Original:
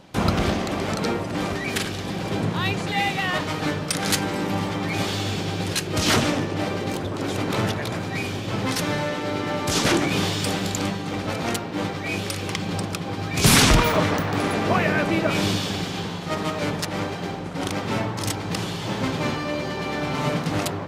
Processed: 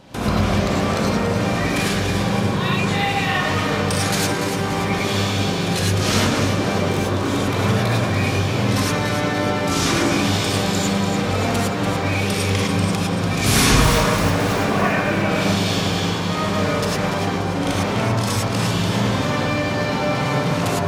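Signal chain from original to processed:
0:13.81–0:14.59: phase distortion by the signal itself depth 0.35 ms
in parallel at −0.5 dB: compressor whose output falls as the input rises −28 dBFS
on the sum: delay that swaps between a low-pass and a high-pass 145 ms, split 1,700 Hz, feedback 70%, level −5 dB
reverb whose tail is shaped and stops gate 130 ms rising, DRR −4.5 dB
level −6.5 dB

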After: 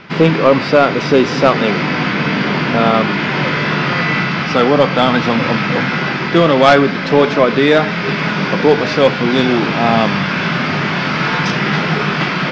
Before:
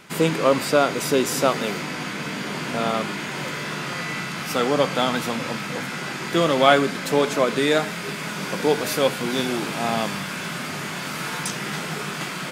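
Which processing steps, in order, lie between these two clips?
elliptic low-pass filter 5,400 Hz, stop band 60 dB
bass and treble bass +3 dB, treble −8 dB
in parallel at +1 dB: speech leveller within 4 dB 0.5 s
on the sum: sine wavefolder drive 5 dB, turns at 2.5 dBFS
level −4 dB

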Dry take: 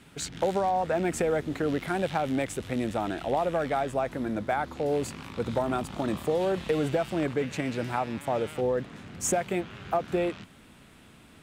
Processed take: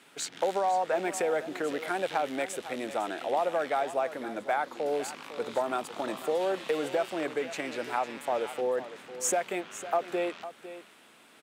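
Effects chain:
high-pass filter 420 Hz 12 dB per octave
on a send: single-tap delay 504 ms −13.5 dB

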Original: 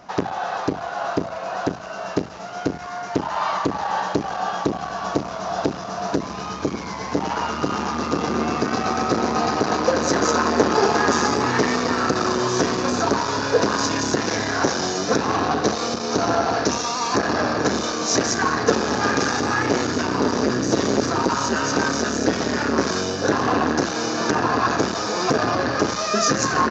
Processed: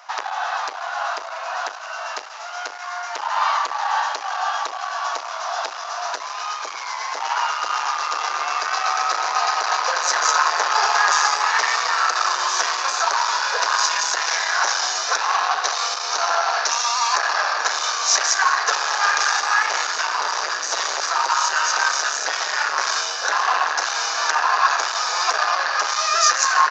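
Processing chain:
high-pass filter 850 Hz 24 dB per octave
level +5 dB

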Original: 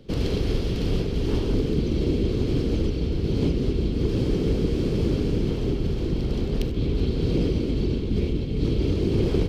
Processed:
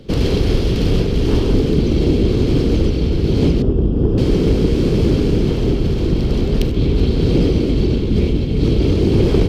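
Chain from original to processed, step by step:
0:03.62–0:04.18: moving average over 21 samples
in parallel at −7.5 dB: asymmetric clip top −24.5 dBFS
on the sum: convolution reverb RT60 1.3 s, pre-delay 32 ms, DRR 17.5 dB
level +6 dB

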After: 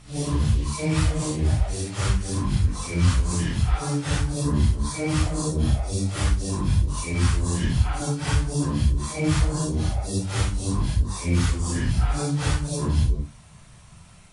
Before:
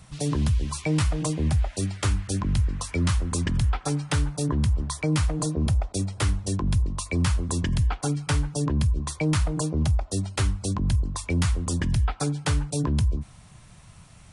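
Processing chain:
random phases in long frames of 200 ms
level +1.5 dB

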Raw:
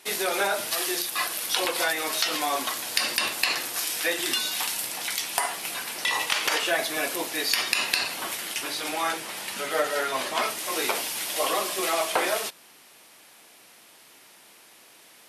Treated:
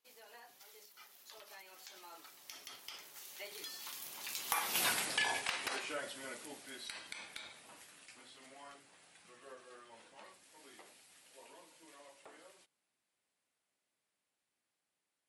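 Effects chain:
source passing by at 0:04.86, 55 m/s, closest 7.5 metres
low-shelf EQ 110 Hz +7.5 dB

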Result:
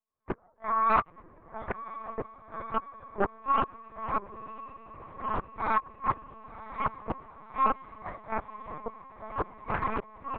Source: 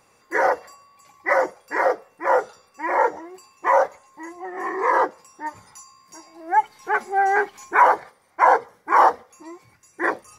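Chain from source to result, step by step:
camcorder AGC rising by 64 dB per second
low-pass filter 1,400 Hz 12 dB per octave
noise gate −40 dBFS, range −46 dB
high-pass filter 160 Hz 12 dB per octave
comb filter 2.8 ms, depth 84%
downward compressor 2.5 to 1, threshold −26 dBFS, peak gain reduction 12 dB
gate with flip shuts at −19 dBFS, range −41 dB
phase-vocoder pitch shift with formants kept −8.5 semitones
feedback delay with all-pass diffusion 1,026 ms, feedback 57%, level −15 dB
linear-prediction vocoder at 8 kHz pitch kept
highs frequency-modulated by the lows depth 0.46 ms
level +5.5 dB

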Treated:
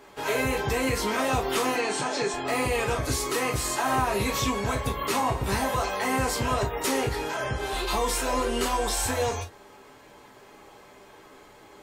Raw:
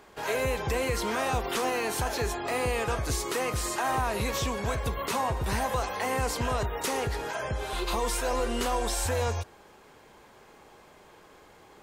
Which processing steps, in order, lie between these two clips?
0:01.75–0:02.34: Chebyshev band-pass filter 150–8,500 Hz, order 4
convolution reverb, pre-delay 3 ms, DRR −1 dB

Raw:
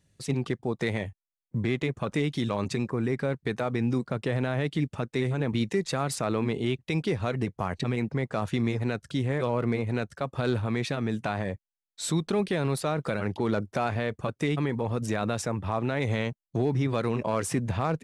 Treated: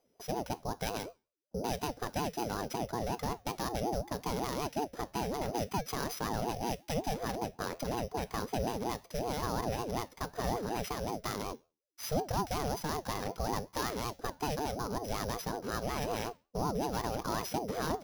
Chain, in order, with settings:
samples sorted by size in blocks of 8 samples
tuned comb filter 82 Hz, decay 0.32 s, harmonics all, mix 50%
ring modulator whose carrier an LFO sweeps 450 Hz, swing 35%, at 5.4 Hz

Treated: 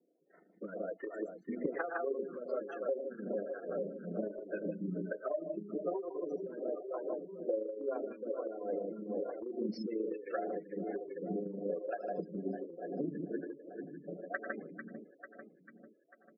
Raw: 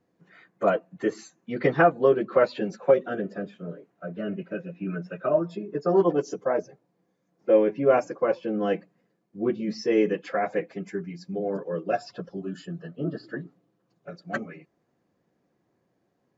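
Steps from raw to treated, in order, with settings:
loudspeakers that aren't time-aligned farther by 33 metres −9 dB, 54 metres −5 dB
amplitude modulation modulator 26 Hz, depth 35%
high-pass filter 200 Hz 24 dB per octave
low-pass that shuts in the quiet parts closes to 630 Hz, open at −23.5 dBFS
repeating echo 445 ms, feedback 53%, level −12 dB
rotating-speaker cabinet horn 5 Hz, later 1.2 Hz, at 0:11.88
gate on every frequency bin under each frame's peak −20 dB strong
downward compressor 16 to 1, threshold −36 dBFS, peak gain reduction 20 dB
phaser with staggered stages 1.2 Hz
level +5 dB

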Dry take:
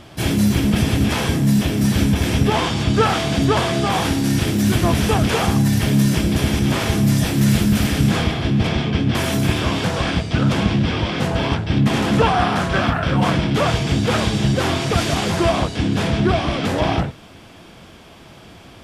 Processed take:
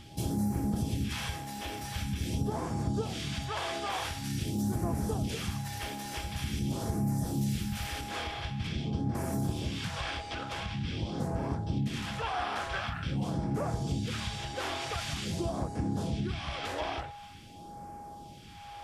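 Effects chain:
downward compressor 2.5 to 1, threshold −26 dBFS, peak gain reduction 10.5 dB
steady tone 820 Hz −35 dBFS
all-pass phaser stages 2, 0.46 Hz, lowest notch 150–3,100 Hz
level −6.5 dB

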